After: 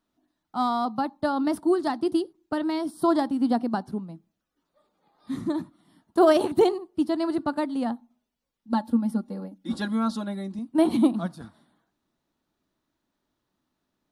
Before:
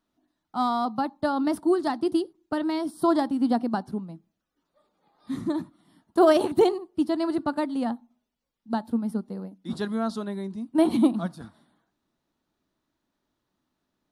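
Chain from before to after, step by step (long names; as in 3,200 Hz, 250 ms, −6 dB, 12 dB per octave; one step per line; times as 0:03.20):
0:08.72–0:10.59: comb filter 3.6 ms, depth 79%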